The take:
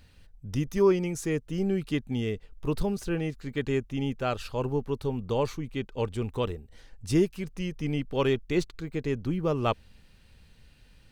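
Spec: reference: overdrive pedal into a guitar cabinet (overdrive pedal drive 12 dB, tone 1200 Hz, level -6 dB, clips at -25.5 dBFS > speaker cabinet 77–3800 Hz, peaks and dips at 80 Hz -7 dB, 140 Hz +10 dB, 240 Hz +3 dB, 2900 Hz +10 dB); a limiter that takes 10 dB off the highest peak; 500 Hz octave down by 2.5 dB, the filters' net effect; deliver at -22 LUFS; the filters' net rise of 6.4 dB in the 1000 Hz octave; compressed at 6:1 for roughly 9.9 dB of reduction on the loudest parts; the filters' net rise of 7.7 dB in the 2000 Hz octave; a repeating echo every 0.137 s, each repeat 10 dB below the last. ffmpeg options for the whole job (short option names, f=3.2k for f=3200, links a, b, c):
-filter_complex "[0:a]equalizer=f=500:t=o:g=-5.5,equalizer=f=1k:t=o:g=8,equalizer=f=2k:t=o:g=4.5,acompressor=threshold=-29dB:ratio=6,alimiter=level_in=4.5dB:limit=-24dB:level=0:latency=1,volume=-4.5dB,aecho=1:1:137|274|411|548:0.316|0.101|0.0324|0.0104,asplit=2[a][b];[b]highpass=f=720:p=1,volume=12dB,asoftclip=type=tanh:threshold=-25.5dB[c];[a][c]amix=inputs=2:normalize=0,lowpass=f=1.2k:p=1,volume=-6dB,highpass=77,equalizer=f=80:t=q:w=4:g=-7,equalizer=f=140:t=q:w=4:g=10,equalizer=f=240:t=q:w=4:g=3,equalizer=f=2.9k:t=q:w=4:g=10,lowpass=f=3.8k:w=0.5412,lowpass=f=3.8k:w=1.3066,volume=15.5dB"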